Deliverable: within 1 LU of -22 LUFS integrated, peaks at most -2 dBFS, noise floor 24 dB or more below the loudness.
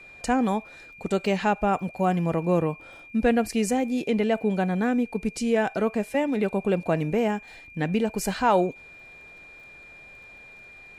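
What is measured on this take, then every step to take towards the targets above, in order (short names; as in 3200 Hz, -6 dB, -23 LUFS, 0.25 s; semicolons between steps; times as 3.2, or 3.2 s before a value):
ticks 23/s; steady tone 2400 Hz; tone level -45 dBFS; loudness -25.5 LUFS; peak -10.0 dBFS; loudness target -22.0 LUFS
-> de-click; notch 2400 Hz, Q 30; gain +3.5 dB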